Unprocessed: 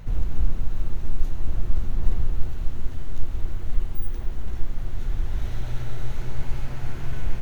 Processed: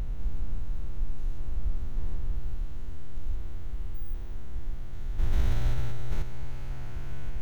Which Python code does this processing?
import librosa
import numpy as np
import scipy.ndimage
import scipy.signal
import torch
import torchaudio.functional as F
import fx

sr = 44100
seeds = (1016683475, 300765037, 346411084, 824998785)

y = fx.spec_steps(x, sr, hold_ms=200)
y = fx.env_flatten(y, sr, amount_pct=100, at=(5.18, 6.21), fade=0.02)
y = y * librosa.db_to_amplitude(-6.5)